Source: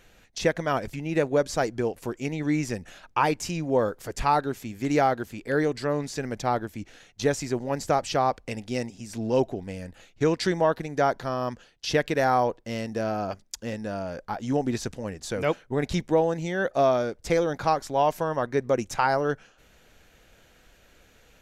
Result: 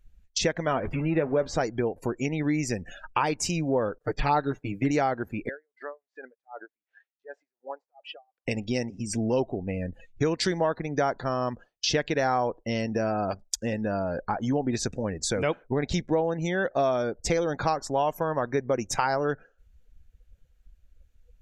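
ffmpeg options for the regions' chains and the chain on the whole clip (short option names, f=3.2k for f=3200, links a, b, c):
-filter_complex "[0:a]asettb=1/sr,asplit=3[a][b][c];[a]atrim=end=0.674[d];[b]atrim=start=0.67:end=1.61,asetpts=PTS-STARTPTS,afade=t=in:d=0.004:c=qsin,afade=t=out:st=0.936:d=0.004:c=qsin,aeval=exprs='val(0)+0.5*0.0188*sgn(val(0))':c=same,lowpass=f=2.4k:p=1,asplit=2[e][f];[f]adelay=12,volume=-11dB[g];[e][g]amix=inputs=2:normalize=0,atrim=end_sample=41454[h];[c]atrim=start=1.606[i];[d][h]acrossfade=d=0.004:c1=hsin:c2=qsin[j];[j][i]acrossfade=d=0.004:c1=qsin:c2=hsin,asettb=1/sr,asplit=3[k][l][m];[k]atrim=end=3.984[n];[l]atrim=start=3.98:end=4.91,asetpts=PTS-STARTPTS,afade=t=in:d=0.004:c=qsin,afade=t=out:st=0.926:d=0.004:c=qsin,acrossover=split=4400[o][p];[p]acompressor=threshold=-53dB:ratio=4:attack=1:release=60[q];[o][q]amix=inputs=2:normalize=0,agate=range=-33dB:threshold=-39dB:ratio=3:release=100:detection=peak,aecho=1:1:6.6:0.95,atrim=end_sample=41013[r];[m]atrim=start=4.906[s];[n][r]acrossfade=d=0.004:c1=hsin:c2=qsin[t];[t][s]acrossfade=d=0.004:c1=qsin:c2=hsin,asettb=1/sr,asplit=3[u][v][w];[u]atrim=end=5.494[x];[v]atrim=start=5.49:end=8.46,asetpts=PTS-STARTPTS,afade=t=in:d=0.004:c=qsin,afade=t=out:st=2.966:d=0.004:c=qsin,acompressor=threshold=-33dB:ratio=12:attack=3.2:release=140:knee=1:detection=peak,highpass=660,lowpass=2.4k,aeval=exprs='val(0)*pow(10,-24*(0.5-0.5*cos(2*PI*2.7*n/s))/20)':c=same[y];[w]atrim=start=8.456[z];[x][y]acrossfade=d=0.004:c1=hsin:c2=qsin[aa];[aa][z]acrossfade=d=0.004:c1=qsin:c2=hsin,afftdn=nr=34:nf=-44,highshelf=f=5.4k:g=7,acompressor=threshold=-37dB:ratio=2.5,volume=9dB"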